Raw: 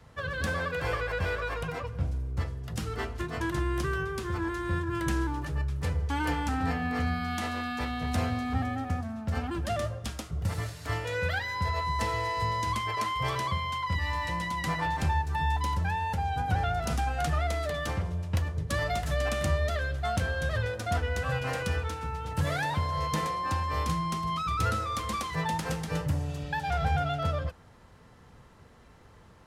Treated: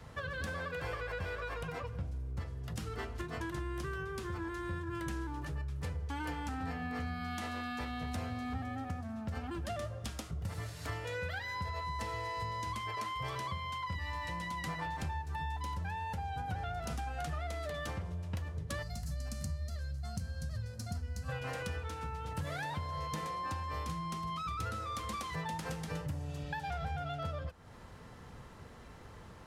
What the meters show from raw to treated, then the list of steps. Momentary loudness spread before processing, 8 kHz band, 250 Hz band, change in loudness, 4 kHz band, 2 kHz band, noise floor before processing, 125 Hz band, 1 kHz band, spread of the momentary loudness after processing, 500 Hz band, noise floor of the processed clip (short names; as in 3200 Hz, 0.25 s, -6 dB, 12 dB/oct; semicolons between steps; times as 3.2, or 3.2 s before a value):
5 LU, -7.5 dB, -8.0 dB, -8.5 dB, -8.5 dB, -9.0 dB, -54 dBFS, -8.5 dB, -8.5 dB, 3 LU, -9.5 dB, -52 dBFS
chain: spectral gain 18.82–21.29, 260–4000 Hz -14 dB; compressor 3:1, threshold -43 dBFS, peak gain reduction 15.5 dB; gain +3 dB